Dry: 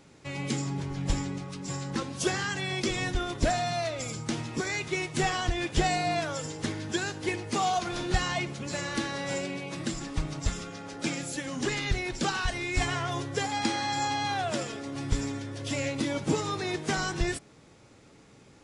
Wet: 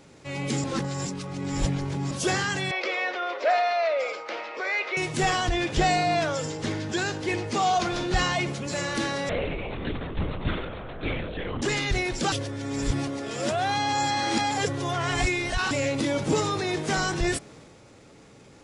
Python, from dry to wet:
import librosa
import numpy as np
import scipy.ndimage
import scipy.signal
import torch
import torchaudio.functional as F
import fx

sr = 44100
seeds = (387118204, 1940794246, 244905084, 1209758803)

y = fx.cabinet(x, sr, low_hz=480.0, low_slope=24, high_hz=4100.0, hz=(540.0, 1300.0, 2200.0, 3500.0), db=(8, 4, 5, -5), at=(2.71, 4.97))
y = fx.lowpass(y, sr, hz=7500.0, slope=12, at=(5.5, 8.32))
y = fx.lpc_vocoder(y, sr, seeds[0], excitation='whisper', order=10, at=(9.29, 11.62))
y = fx.edit(y, sr, fx.reverse_span(start_s=0.64, length_s=1.47),
    fx.reverse_span(start_s=12.32, length_s=3.39), tone=tone)
y = fx.peak_eq(y, sr, hz=540.0, db=3.0, octaves=0.77)
y = fx.transient(y, sr, attack_db=-4, sustain_db=4)
y = F.gain(torch.from_numpy(y), 3.5).numpy()